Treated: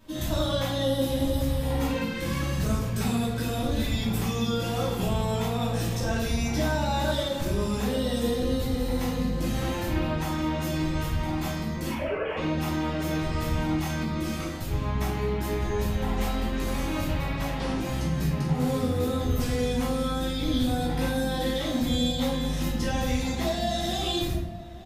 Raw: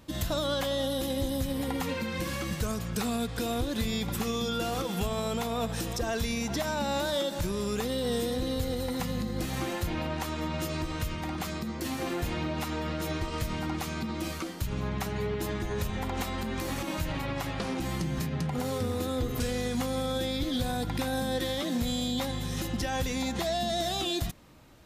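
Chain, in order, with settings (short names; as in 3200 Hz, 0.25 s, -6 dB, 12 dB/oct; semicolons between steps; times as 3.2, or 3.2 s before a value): 11.89–12.37 sine-wave speech; outdoor echo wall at 150 m, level -15 dB; shoebox room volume 200 m³, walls mixed, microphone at 2.8 m; gain -7 dB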